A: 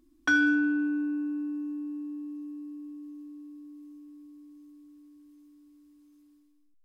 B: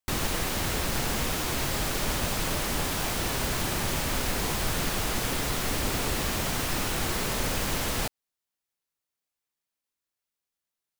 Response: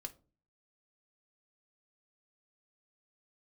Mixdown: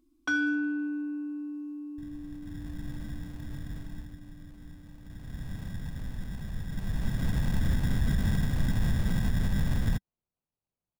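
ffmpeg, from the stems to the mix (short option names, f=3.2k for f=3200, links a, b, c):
-filter_complex "[0:a]bandreject=f=1.8k:w=5.5,volume=-4dB[a];[1:a]firequalizer=gain_entry='entry(190,0);entry(430,-30);entry(2500,-20)':delay=0.05:min_phase=1,dynaudnorm=f=140:g=9:m=10dB,acrusher=samples=25:mix=1:aa=0.000001,adelay=1900,volume=8.5dB,afade=t=out:st=3.81:d=0.35:silence=0.354813,afade=t=in:st=5.01:d=0.49:silence=0.298538,afade=t=in:st=6.69:d=0.8:silence=0.223872[b];[a][b]amix=inputs=2:normalize=0,alimiter=limit=-18.5dB:level=0:latency=1:release=71"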